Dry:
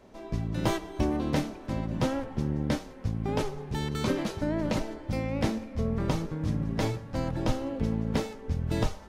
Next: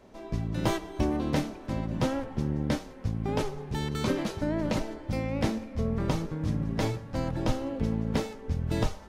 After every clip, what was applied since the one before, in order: no audible change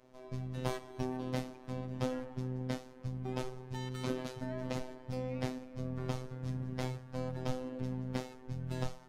robot voice 128 Hz; feedback comb 170 Hz, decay 0.66 s, harmonics odd, mix 50%; trim -1 dB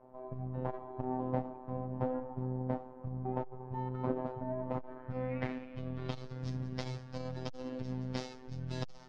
low-pass sweep 890 Hz -> 5.2 kHz, 4.58–6.38 s; transformer saturation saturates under 310 Hz; trim +2 dB

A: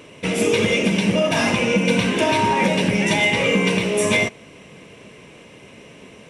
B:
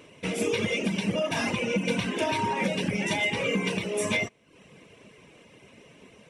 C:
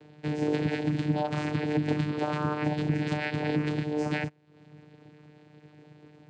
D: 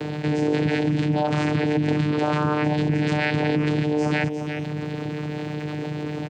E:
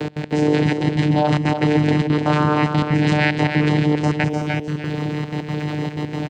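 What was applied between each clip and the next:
reverb removal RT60 0.64 s; trim -7.5 dB
vocoder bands 8, saw 150 Hz
delay 353 ms -23 dB; level flattener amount 70%; trim +2.5 dB
trance gate "x.x.xxxx" 186 bpm -24 dB; on a send: delay 301 ms -6.5 dB; on the sum: trim +5 dB

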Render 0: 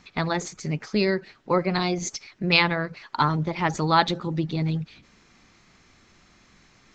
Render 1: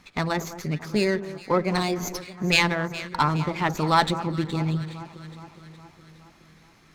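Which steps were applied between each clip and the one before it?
echo whose repeats swap between lows and highs 208 ms, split 1.4 kHz, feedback 75%, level -13 dB; sliding maximum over 3 samples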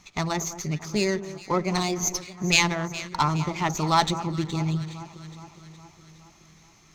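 graphic EQ with 31 bands 250 Hz -7 dB, 500 Hz -7 dB, 1.6 kHz -8 dB, 6.3 kHz +12 dB, 10 kHz -6 dB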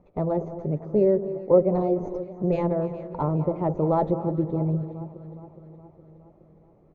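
resonant low-pass 530 Hz, resonance Q 4.9; feedback delay 294 ms, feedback 30%, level -16.5 dB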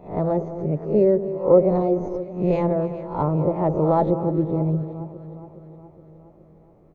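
reverse spectral sustain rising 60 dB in 0.40 s; trim +2.5 dB

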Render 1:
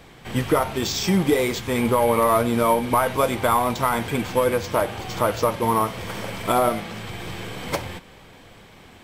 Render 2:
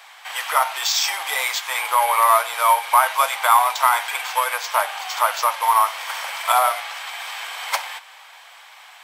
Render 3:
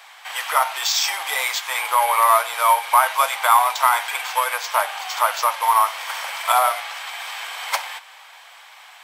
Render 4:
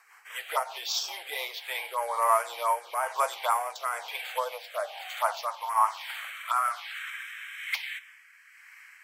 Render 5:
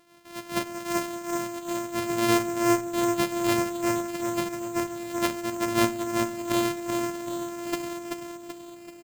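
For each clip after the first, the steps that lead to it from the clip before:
steep high-pass 760 Hz 36 dB/octave; trim +6.5 dB
no audible change
touch-sensitive phaser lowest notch 580 Hz, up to 3.8 kHz, full sweep at -13 dBFS; rotary cabinet horn 5 Hz, later 1.1 Hz, at 1.06 s; high-pass sweep 400 Hz -> 1.9 kHz, 3.94–7.67 s; trim -6.5 dB
sorted samples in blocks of 128 samples; feedback delay 383 ms, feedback 48%, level -4.5 dB; reverberation RT60 0.65 s, pre-delay 7 ms, DRR 16 dB

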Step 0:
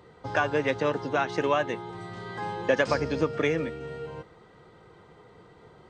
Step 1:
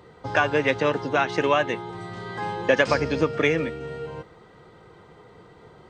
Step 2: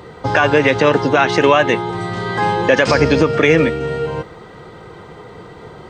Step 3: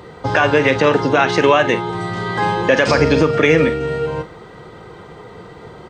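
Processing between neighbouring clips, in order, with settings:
dynamic bell 2.5 kHz, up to +4 dB, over -41 dBFS, Q 1.3; trim +3.5 dB
loudness maximiser +14 dB; trim -1 dB
doubling 45 ms -12 dB; trim -1 dB

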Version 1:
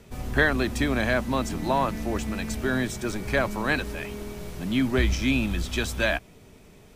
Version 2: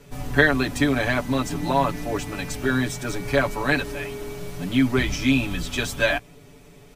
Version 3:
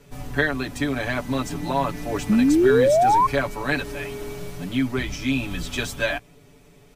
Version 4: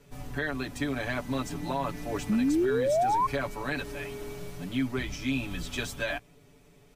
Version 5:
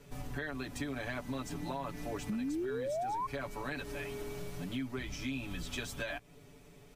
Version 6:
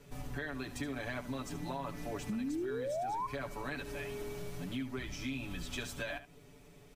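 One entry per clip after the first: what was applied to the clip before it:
comb 7 ms, depth 99%
gain riding within 3 dB 0.5 s; painted sound rise, 2.29–3.27 s, 200–1100 Hz -14 dBFS; trim -2.5 dB
peak limiter -13.5 dBFS, peak gain reduction 7 dB; trim -6 dB
compression 3:1, threshold -39 dBFS, peak gain reduction 12 dB; trim +1 dB
delay 73 ms -13.5 dB; trim -1 dB

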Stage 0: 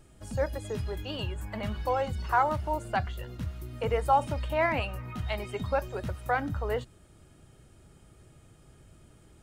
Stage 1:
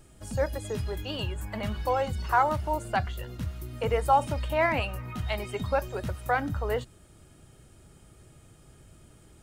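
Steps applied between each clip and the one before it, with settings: treble shelf 5.4 kHz +4.5 dB; trim +1.5 dB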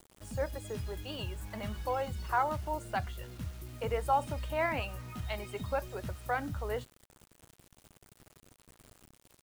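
bit crusher 8-bit; trim -6.5 dB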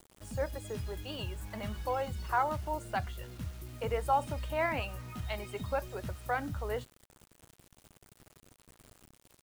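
no audible change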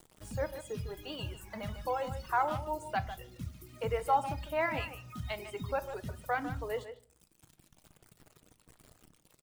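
reverb removal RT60 1.6 s; speakerphone echo 150 ms, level -10 dB; simulated room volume 490 m³, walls furnished, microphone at 0.51 m

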